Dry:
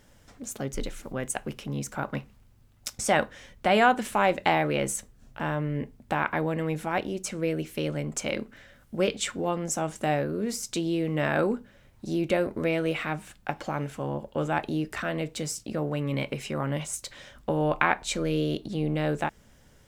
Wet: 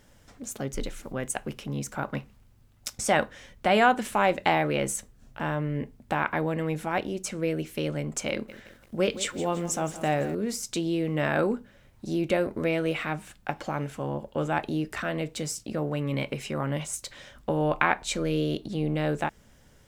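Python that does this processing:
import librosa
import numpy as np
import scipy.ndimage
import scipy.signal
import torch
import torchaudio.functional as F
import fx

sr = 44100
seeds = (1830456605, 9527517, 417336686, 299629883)

y = fx.echo_crushed(x, sr, ms=169, feedback_pct=55, bits=8, wet_db=-14.0, at=(8.31, 10.35))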